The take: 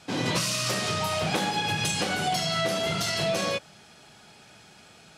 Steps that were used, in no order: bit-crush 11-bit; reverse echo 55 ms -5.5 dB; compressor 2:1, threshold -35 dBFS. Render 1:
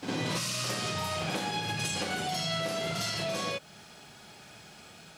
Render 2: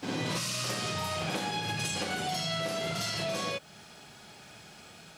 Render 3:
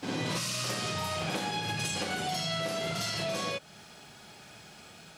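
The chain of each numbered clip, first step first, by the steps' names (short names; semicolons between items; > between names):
compressor > bit-crush > reverse echo; reverse echo > compressor > bit-crush; bit-crush > reverse echo > compressor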